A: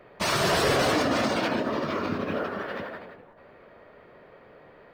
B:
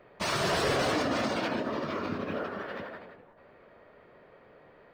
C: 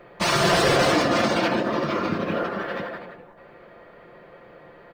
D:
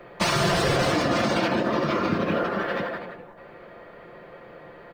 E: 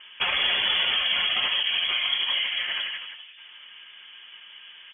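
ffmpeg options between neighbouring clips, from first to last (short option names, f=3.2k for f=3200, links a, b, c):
-af "equalizer=f=14k:t=o:w=0.66:g=-7,volume=-4.5dB"
-af "aecho=1:1:5.8:0.42,volume=8dB"
-filter_complex "[0:a]acrossover=split=170[a][b];[b]acompressor=threshold=-23dB:ratio=5[c];[a][c]amix=inputs=2:normalize=0,volume=2.5dB"
-af "lowpass=f=3k:t=q:w=0.5098,lowpass=f=3k:t=q:w=0.6013,lowpass=f=3k:t=q:w=0.9,lowpass=f=3k:t=q:w=2.563,afreqshift=-3500,volume=-1.5dB"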